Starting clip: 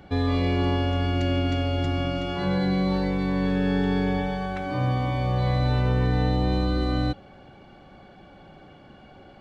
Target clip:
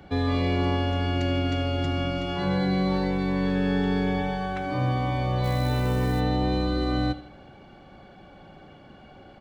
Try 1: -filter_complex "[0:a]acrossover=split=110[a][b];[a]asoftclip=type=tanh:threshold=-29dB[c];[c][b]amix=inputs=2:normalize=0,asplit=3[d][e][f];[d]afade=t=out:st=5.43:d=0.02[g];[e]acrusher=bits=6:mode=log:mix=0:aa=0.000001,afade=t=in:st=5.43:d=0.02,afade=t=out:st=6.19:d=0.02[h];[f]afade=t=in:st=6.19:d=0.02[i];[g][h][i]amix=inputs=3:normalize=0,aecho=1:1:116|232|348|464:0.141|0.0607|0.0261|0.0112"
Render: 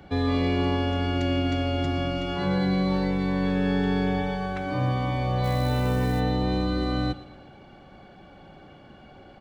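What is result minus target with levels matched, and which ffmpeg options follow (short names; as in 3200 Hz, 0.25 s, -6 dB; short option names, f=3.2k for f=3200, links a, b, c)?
echo 39 ms late
-filter_complex "[0:a]acrossover=split=110[a][b];[a]asoftclip=type=tanh:threshold=-29dB[c];[c][b]amix=inputs=2:normalize=0,asplit=3[d][e][f];[d]afade=t=out:st=5.43:d=0.02[g];[e]acrusher=bits=6:mode=log:mix=0:aa=0.000001,afade=t=in:st=5.43:d=0.02,afade=t=out:st=6.19:d=0.02[h];[f]afade=t=in:st=6.19:d=0.02[i];[g][h][i]amix=inputs=3:normalize=0,aecho=1:1:77|154|231|308:0.141|0.0607|0.0261|0.0112"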